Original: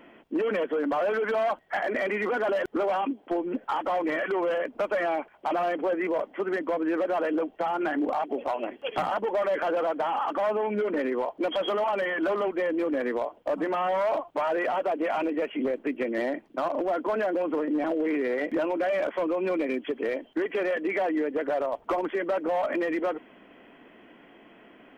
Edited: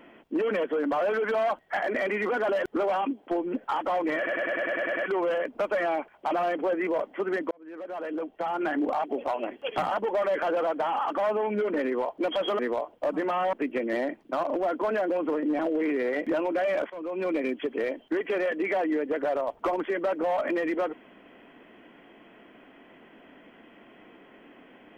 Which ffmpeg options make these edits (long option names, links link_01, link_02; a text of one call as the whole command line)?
ffmpeg -i in.wav -filter_complex "[0:a]asplit=13[link_01][link_02][link_03][link_04][link_05][link_06][link_07][link_08][link_09][link_10][link_11][link_12][link_13];[link_01]atrim=end=4.272[link_14];[link_02]atrim=start=4.168:end=4.272[link_15];[link_03]atrim=start=4.168:end=4.272[link_16];[link_04]atrim=start=4.168:end=4.272[link_17];[link_05]atrim=start=4.168:end=4.272[link_18];[link_06]atrim=start=4.168:end=4.272[link_19];[link_07]atrim=start=4.168:end=4.272[link_20];[link_08]atrim=start=4.168:end=4.272[link_21];[link_09]atrim=start=4.168:end=6.71,asetpts=PTS-STARTPTS,afade=type=out:start_time=2.538:duration=0.004:curve=hsin[link_22];[link_10]atrim=start=6.71:end=11.792,asetpts=PTS-STARTPTS,afade=type=in:duration=1.21[link_23];[link_11]atrim=start=13.028:end=13.972[link_24];[link_12]atrim=start=15.778:end=19.15,asetpts=PTS-STARTPTS,afade=type=out:start_time=3.368:duration=0.004:curve=hsin:silence=0.149624[link_25];[link_13]atrim=start=19.15,asetpts=PTS-STARTPTS,afade=type=in:duration=0.44:silence=0.149624[link_26];[link_14][link_15]acrossfade=duration=0.004:curve1=hsin:curve2=hsin[link_27];[link_27][link_16]acrossfade=duration=0.004:curve1=hsin:curve2=hsin[link_28];[link_28][link_17]acrossfade=duration=0.004:curve1=hsin:curve2=hsin[link_29];[link_29][link_18]acrossfade=duration=0.004:curve1=hsin:curve2=hsin[link_30];[link_30][link_19]acrossfade=duration=0.004:curve1=hsin:curve2=hsin[link_31];[link_31][link_20]acrossfade=duration=0.004:curve1=hsin:curve2=hsin[link_32];[link_32][link_21]acrossfade=duration=0.004:curve1=hsin:curve2=hsin[link_33];[link_22][link_23]concat=n=2:v=0:a=1[link_34];[link_33][link_34]acrossfade=duration=0.004:curve1=hsin:curve2=hsin[link_35];[link_35][link_24]acrossfade=duration=0.004:curve1=hsin:curve2=hsin[link_36];[link_25][link_26]concat=n=2:v=0:a=1[link_37];[link_36][link_37]acrossfade=duration=0.004:curve1=hsin:curve2=hsin" out.wav